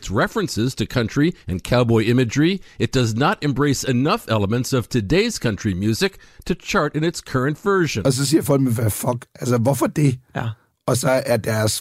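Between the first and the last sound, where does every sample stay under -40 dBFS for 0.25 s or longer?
10.54–10.88 s

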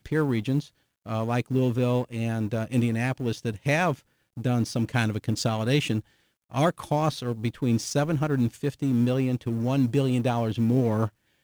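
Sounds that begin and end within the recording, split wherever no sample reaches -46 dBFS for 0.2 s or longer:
1.06–4.00 s
4.37–6.01 s
6.51–11.09 s

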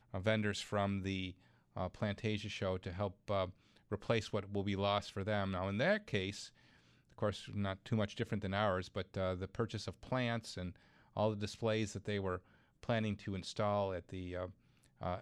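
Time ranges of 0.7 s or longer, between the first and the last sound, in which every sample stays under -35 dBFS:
6.30–7.22 s

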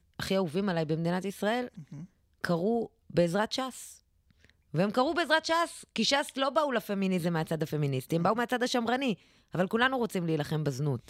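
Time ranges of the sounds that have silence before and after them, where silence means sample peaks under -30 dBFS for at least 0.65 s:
2.44–3.69 s

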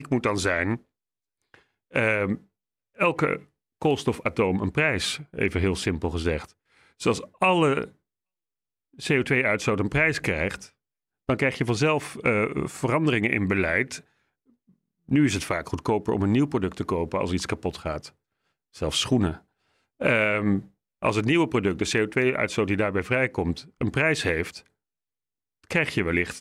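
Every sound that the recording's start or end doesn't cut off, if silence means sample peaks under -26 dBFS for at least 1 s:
1.96–7.84 s
9.04–13.95 s
15.11–24.47 s

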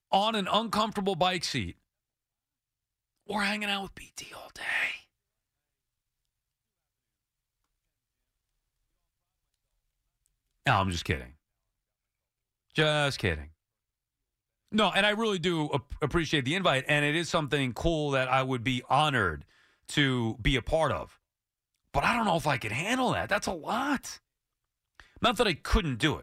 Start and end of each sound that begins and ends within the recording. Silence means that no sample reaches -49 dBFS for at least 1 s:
3.29–5.02 s
10.26–11.31 s
12.70–13.49 s

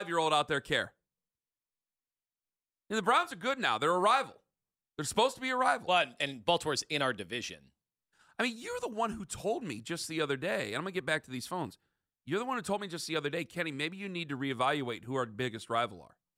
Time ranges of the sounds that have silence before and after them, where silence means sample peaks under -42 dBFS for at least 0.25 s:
2.90–4.30 s
4.99–7.55 s
8.39–11.70 s
12.28–16.01 s

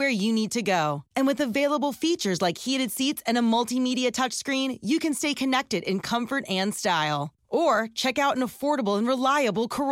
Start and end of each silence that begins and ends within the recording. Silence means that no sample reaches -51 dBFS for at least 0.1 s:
1.02–1.15 s
7.29–7.51 s

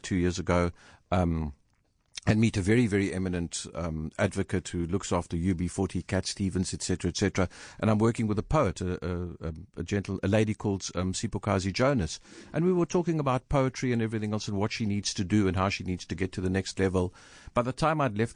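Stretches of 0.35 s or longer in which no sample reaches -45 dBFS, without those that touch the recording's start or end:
1.53–2.16 s

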